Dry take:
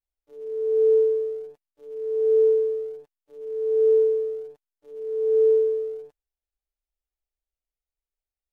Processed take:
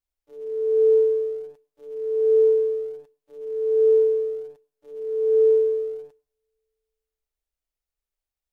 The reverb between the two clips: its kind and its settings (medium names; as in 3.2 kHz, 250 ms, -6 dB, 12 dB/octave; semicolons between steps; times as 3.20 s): two-slope reverb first 0.45 s, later 1.8 s, from -26 dB, DRR 17 dB; trim +2 dB